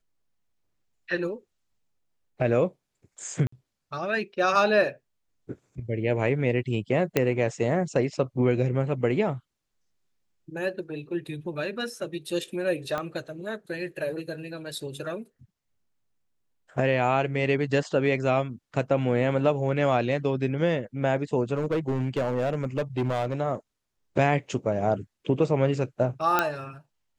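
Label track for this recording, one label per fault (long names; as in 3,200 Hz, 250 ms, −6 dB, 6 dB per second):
3.470000	3.520000	drop-out 54 ms
7.170000	7.170000	click −8 dBFS
12.980000	12.980000	click −17 dBFS
21.540000	23.340000	clipping −21.5 dBFS
26.390000	26.390000	click −7 dBFS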